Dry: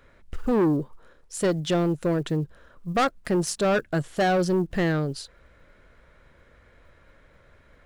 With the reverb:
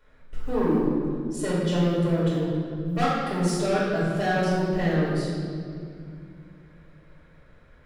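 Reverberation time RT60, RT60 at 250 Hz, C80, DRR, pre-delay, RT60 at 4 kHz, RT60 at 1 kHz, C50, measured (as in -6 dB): 2.3 s, 3.3 s, 0.0 dB, -9.5 dB, 4 ms, 1.7 s, 2.0 s, -2.0 dB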